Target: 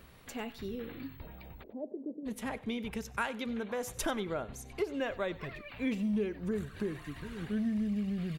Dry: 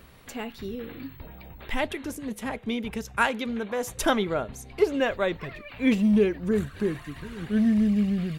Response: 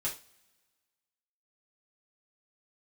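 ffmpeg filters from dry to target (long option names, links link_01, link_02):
-filter_complex "[0:a]acompressor=threshold=-28dB:ratio=2.5,asplit=3[link_01][link_02][link_03];[link_01]afade=type=out:start_time=1.62:duration=0.02[link_04];[link_02]asuperpass=centerf=350:order=8:qfactor=0.81,afade=type=in:start_time=1.62:duration=0.02,afade=type=out:start_time=2.25:duration=0.02[link_05];[link_03]afade=type=in:start_time=2.25:duration=0.02[link_06];[link_04][link_05][link_06]amix=inputs=3:normalize=0,aecho=1:1:95|190:0.112|0.0247,volume=-4.5dB"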